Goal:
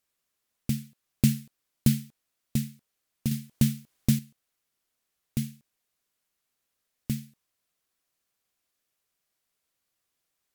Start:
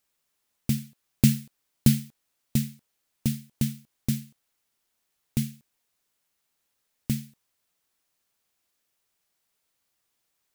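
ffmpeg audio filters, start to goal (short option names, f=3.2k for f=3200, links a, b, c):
-filter_complex "[0:a]highshelf=f=6k:g=9.5,asettb=1/sr,asplit=3[a][b][c];[a]atrim=end=3.314[d];[b]atrim=start=3.31:end=4.19,asetpts=PTS-STARTPTS,afade=t=in:d=0.004:c=qsin,afade=t=out:st=0.876:d=0.004:c=qsin,acontrast=82[e];[c]atrim=start=4.186[f];[d][e]acrossfade=d=0.004:c1=hsin:c2=qsin[g];[g][f]acrossfade=d=0.004:c1=qsin:c2=hsin,aemphasis=mode=reproduction:type=cd,bandreject=f=880:w=12,volume=-3dB"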